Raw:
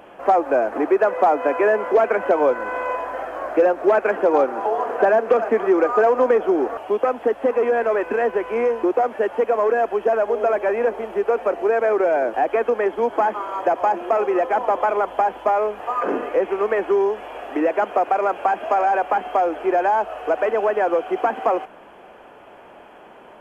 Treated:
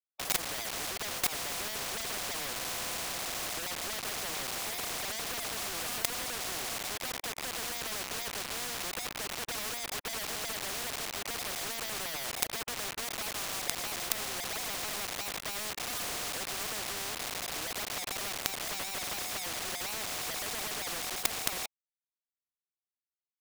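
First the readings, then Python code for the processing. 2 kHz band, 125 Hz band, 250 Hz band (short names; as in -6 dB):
-9.5 dB, n/a, -21.0 dB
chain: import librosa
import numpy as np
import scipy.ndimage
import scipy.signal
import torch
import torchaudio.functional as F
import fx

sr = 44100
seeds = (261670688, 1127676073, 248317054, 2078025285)

y = fx.vowel_filter(x, sr, vowel='a')
y = fx.quant_companded(y, sr, bits=2)
y = fx.spectral_comp(y, sr, ratio=4.0)
y = y * librosa.db_to_amplitude(-4.5)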